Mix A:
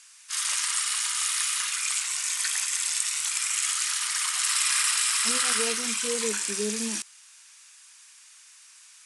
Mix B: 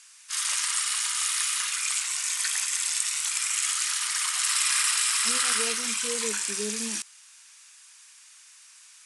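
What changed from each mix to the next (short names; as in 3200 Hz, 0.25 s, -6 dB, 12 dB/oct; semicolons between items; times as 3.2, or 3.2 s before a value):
speech -3.5 dB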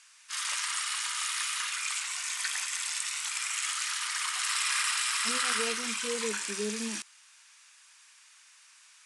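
master: add high shelf 5300 Hz -10.5 dB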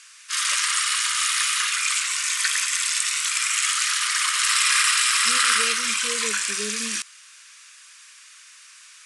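background +10.0 dB; master: add Butterworth band-stop 820 Hz, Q 2.1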